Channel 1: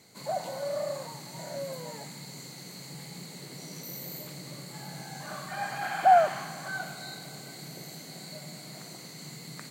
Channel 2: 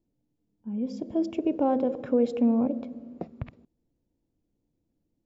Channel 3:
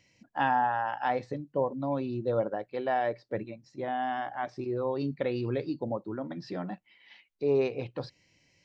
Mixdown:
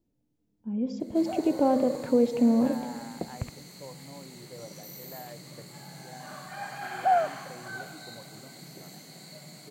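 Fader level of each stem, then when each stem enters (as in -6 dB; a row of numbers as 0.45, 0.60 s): -4.0, +1.0, -17.0 dB; 1.00, 0.00, 2.25 s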